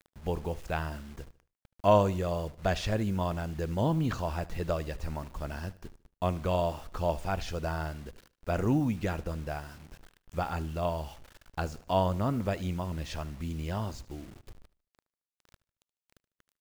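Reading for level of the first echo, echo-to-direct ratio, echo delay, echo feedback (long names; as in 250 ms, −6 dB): −19.5 dB, −19.0 dB, 75 ms, 39%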